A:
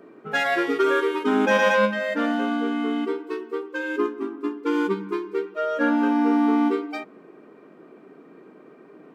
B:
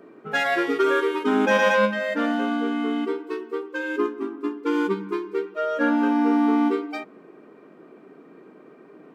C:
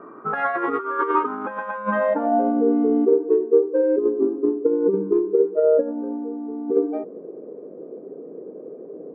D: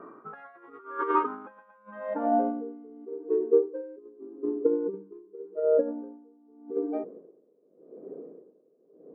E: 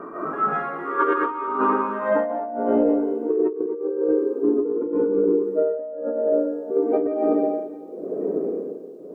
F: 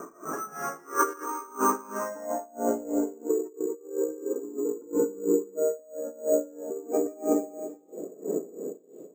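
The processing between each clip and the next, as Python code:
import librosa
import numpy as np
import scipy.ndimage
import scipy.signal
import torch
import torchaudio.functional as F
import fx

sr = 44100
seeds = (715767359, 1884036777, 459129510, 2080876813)

y1 = x
y2 = fx.over_compress(y1, sr, threshold_db=-25.0, ratio=-0.5)
y2 = fx.filter_sweep_lowpass(y2, sr, from_hz=1200.0, to_hz=500.0, start_s=1.87, end_s=2.62, q=5.3)
y3 = y2 * 10.0 ** (-25 * (0.5 - 0.5 * np.cos(2.0 * np.pi * 0.86 * np.arange(len(y2)) / sr)) / 20.0)
y3 = y3 * 10.0 ** (-4.0 / 20.0)
y4 = fx.rev_freeverb(y3, sr, rt60_s=1.3, hf_ratio=0.95, predelay_ms=105, drr_db=-9.5)
y4 = fx.over_compress(y4, sr, threshold_db=-27.0, ratio=-1.0)
y4 = y4 * 10.0 ** (4.5 / 20.0)
y5 = np.repeat(y4[::6], 6)[:len(y4)]
y5 = y5 * 10.0 ** (-20 * (0.5 - 0.5 * np.cos(2.0 * np.pi * 3.0 * np.arange(len(y5)) / sr)) / 20.0)
y5 = y5 * 10.0 ** (-2.0 / 20.0)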